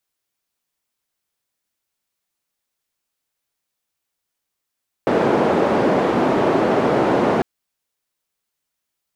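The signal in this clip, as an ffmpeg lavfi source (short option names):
-f lavfi -i "anoisesrc=c=white:d=2.35:r=44100:seed=1,highpass=f=220,lowpass=f=550,volume=5.5dB"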